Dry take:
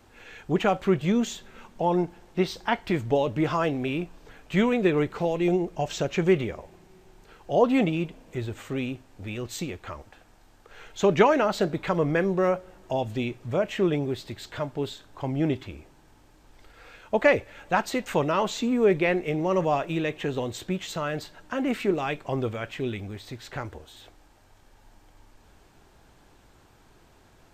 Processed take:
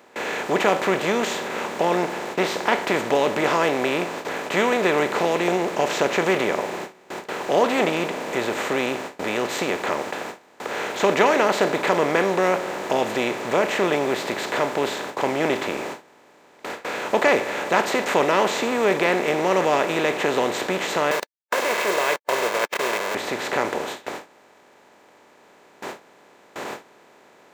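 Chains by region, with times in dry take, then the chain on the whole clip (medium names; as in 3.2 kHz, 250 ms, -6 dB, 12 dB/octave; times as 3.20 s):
21.11–23.15 s: send-on-delta sampling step -31 dBFS + high-pass 750 Hz + comb 1.9 ms, depth 91%
whole clip: spectral levelling over time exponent 0.4; gate with hold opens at -17 dBFS; high-pass 500 Hz 6 dB/octave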